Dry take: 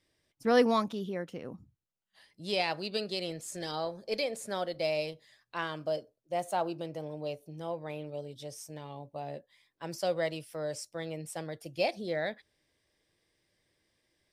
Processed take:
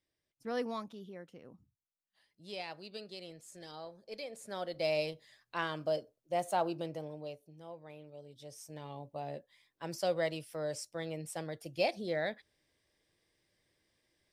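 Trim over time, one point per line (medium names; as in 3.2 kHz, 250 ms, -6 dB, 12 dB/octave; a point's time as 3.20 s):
4.18 s -12 dB
4.93 s -0.5 dB
6.87 s -0.5 dB
7.56 s -11.5 dB
8.17 s -11.5 dB
8.86 s -1.5 dB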